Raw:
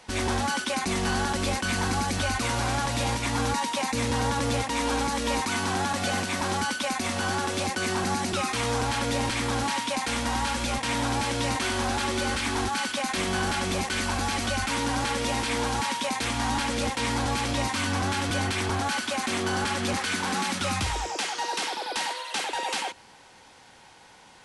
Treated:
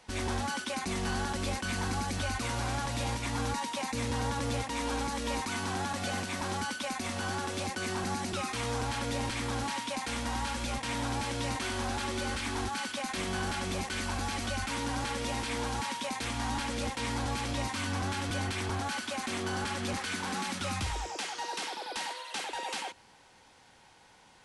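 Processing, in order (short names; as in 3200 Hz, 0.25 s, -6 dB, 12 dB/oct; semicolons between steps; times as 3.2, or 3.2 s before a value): low shelf 120 Hz +4 dB; gain -7 dB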